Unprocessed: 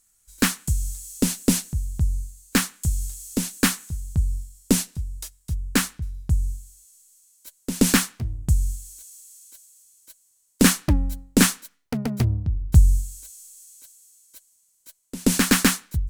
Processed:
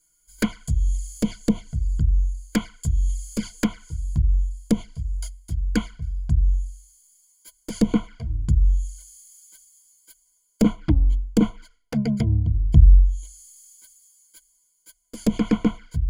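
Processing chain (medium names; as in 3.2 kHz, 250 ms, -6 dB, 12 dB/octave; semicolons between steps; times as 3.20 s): low-pass that closes with the level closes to 1.1 kHz, closed at -14.5 dBFS; rippled EQ curve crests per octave 1.8, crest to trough 17 dB; touch-sensitive flanger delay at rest 6.4 ms, full sweep at -16.5 dBFS; trim -1.5 dB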